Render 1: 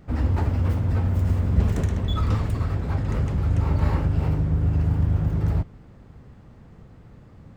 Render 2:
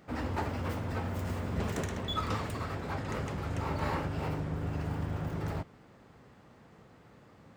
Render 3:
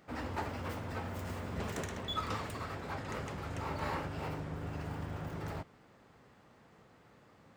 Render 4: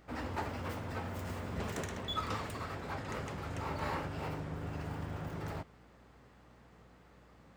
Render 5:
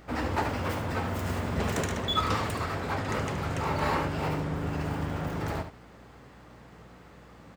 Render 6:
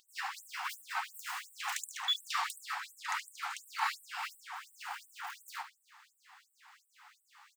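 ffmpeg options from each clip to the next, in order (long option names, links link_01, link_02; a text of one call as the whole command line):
ffmpeg -i in.wav -af "highpass=frequency=510:poles=1" out.wav
ffmpeg -i in.wav -af "lowshelf=frequency=390:gain=-5,volume=-2dB" out.wav
ffmpeg -i in.wav -af "aeval=exprs='val(0)+0.000708*(sin(2*PI*60*n/s)+sin(2*PI*2*60*n/s)/2+sin(2*PI*3*60*n/s)/3+sin(2*PI*4*60*n/s)/4+sin(2*PI*5*60*n/s)/5)':channel_layout=same" out.wav
ffmpeg -i in.wav -af "aecho=1:1:73:0.335,volume=9dB" out.wav
ffmpeg -i in.wav -af "afftfilt=real='re*gte(b*sr/1024,690*pow(7900/690,0.5+0.5*sin(2*PI*2.8*pts/sr)))':imag='im*gte(b*sr/1024,690*pow(7900/690,0.5+0.5*sin(2*PI*2.8*pts/sr)))':win_size=1024:overlap=0.75" out.wav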